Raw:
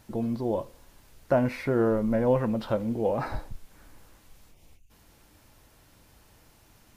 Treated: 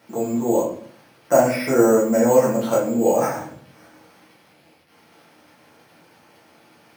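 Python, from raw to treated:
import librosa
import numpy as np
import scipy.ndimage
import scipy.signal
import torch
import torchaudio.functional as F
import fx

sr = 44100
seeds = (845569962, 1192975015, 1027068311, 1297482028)

y = fx.dmg_crackle(x, sr, seeds[0], per_s=92.0, level_db=-43.0)
y = np.repeat(scipy.signal.resample_poly(y, 1, 6), 6)[:len(y)]
y = scipy.signal.sosfilt(scipy.signal.bessel(4, 230.0, 'highpass', norm='mag', fs=sr, output='sos'), y)
y = fx.room_shoebox(y, sr, seeds[1], volume_m3=63.0, walls='mixed', distance_m=1.6)
y = y * 10.0 ** (1.5 / 20.0)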